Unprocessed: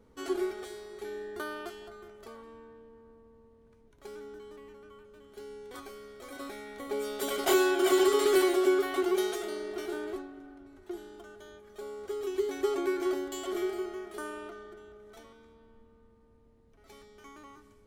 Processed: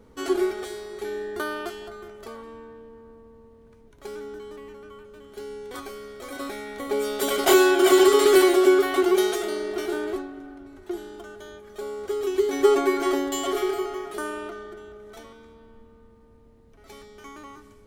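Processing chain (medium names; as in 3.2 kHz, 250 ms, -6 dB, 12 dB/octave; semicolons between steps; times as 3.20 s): 12.52–14.14 s: comb 7.1 ms, depth 78%; trim +8 dB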